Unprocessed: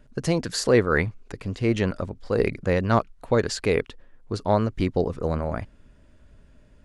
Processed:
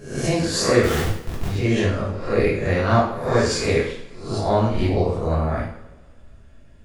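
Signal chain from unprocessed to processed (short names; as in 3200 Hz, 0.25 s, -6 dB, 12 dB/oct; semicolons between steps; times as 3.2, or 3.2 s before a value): spectral swells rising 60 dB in 0.53 s; 0.83–1.48 Schmitt trigger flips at -26.5 dBFS; two-slope reverb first 0.57 s, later 1.9 s, from -21 dB, DRR -5 dB; gain -4 dB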